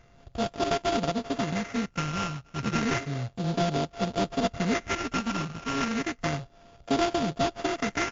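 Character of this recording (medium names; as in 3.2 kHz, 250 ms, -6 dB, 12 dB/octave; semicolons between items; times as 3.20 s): a buzz of ramps at a fixed pitch in blocks of 64 samples; phasing stages 6, 0.32 Hz, lowest notch 580–2500 Hz; aliases and images of a low sample rate 4.1 kHz, jitter 20%; WMA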